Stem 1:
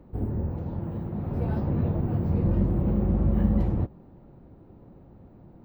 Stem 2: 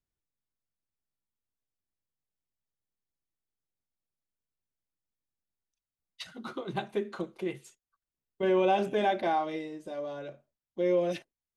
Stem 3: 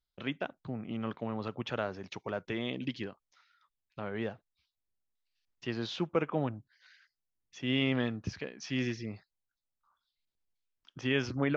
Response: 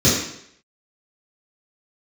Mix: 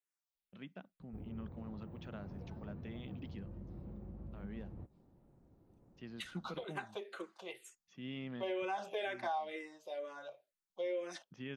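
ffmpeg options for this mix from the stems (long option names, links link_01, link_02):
-filter_complex "[0:a]acompressor=threshold=-29dB:ratio=6,adelay=1000,volume=-16dB[link_01];[1:a]highpass=600,asplit=2[link_02][link_03];[link_03]afreqshift=-2.1[link_04];[link_02][link_04]amix=inputs=2:normalize=1,volume=0dB,asplit=2[link_05][link_06];[2:a]equalizer=frequency=190:width_type=o:width=0.51:gain=15,adelay=350,volume=-17.5dB[link_07];[link_06]apad=whole_len=525582[link_08];[link_07][link_08]sidechaincompress=threshold=-43dB:ratio=8:attack=16:release=296[link_09];[link_01][link_05][link_09]amix=inputs=3:normalize=0,acompressor=threshold=-36dB:ratio=3"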